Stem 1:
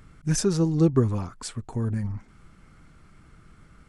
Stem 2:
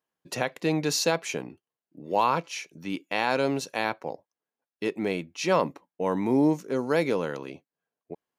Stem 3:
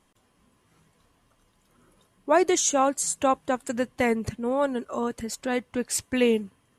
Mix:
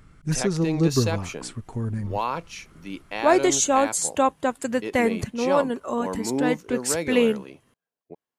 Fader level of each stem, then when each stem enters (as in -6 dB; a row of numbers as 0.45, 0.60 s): -1.0, -3.5, +2.0 dB; 0.00, 0.00, 0.95 s